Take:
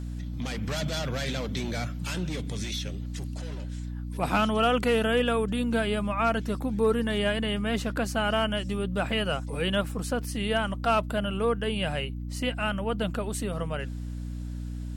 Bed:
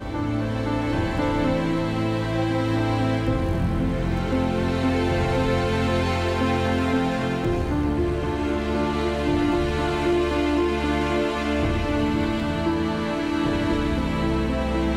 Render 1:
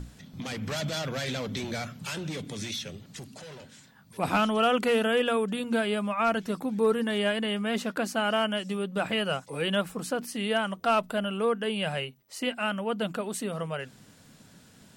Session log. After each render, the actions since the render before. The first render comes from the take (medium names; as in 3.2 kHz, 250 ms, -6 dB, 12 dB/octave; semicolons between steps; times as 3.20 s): hum notches 60/120/180/240/300 Hz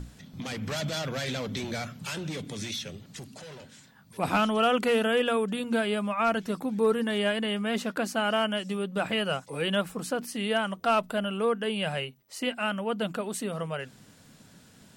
no audible change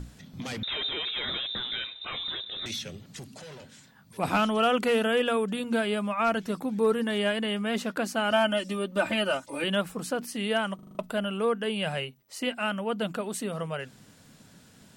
0.63–2.66 s: frequency inversion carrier 3.8 kHz; 8.31–9.64 s: comb 3.3 ms, depth 93%; 10.75 s: stutter in place 0.04 s, 6 plays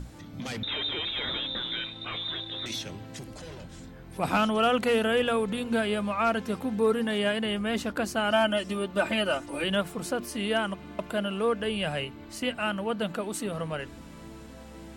add bed -22.5 dB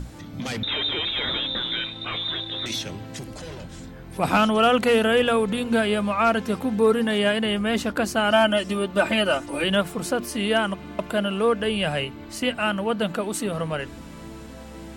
trim +5.5 dB